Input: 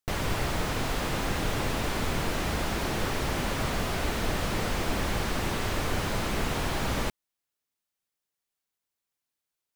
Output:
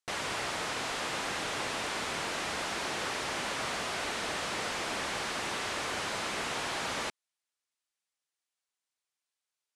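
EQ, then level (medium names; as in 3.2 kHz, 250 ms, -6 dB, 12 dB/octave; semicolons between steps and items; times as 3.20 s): high-pass 810 Hz 6 dB/octave; low-pass 10 kHz 24 dB/octave; 0.0 dB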